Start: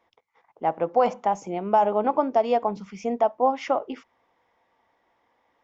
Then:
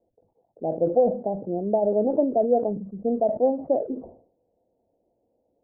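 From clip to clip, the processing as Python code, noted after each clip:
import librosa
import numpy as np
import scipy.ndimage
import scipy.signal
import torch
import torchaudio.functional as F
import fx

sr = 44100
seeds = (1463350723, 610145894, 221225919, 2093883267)

y = scipy.signal.sosfilt(scipy.signal.butter(8, 650.0, 'lowpass', fs=sr, output='sos'), x)
y = fx.sustainer(y, sr, db_per_s=110.0)
y = F.gain(torch.from_numpy(y), 3.0).numpy()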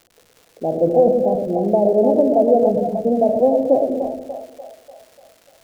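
y = fx.dmg_crackle(x, sr, seeds[0], per_s=230.0, level_db=-43.0)
y = fx.echo_split(y, sr, split_hz=610.0, low_ms=118, high_ms=295, feedback_pct=52, wet_db=-4.0)
y = F.gain(torch.from_numpy(y), 5.5).numpy()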